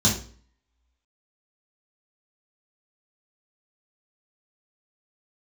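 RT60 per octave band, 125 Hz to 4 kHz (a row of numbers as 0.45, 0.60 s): 0.50, 0.50, 0.45, 0.40, 0.40, 0.40 s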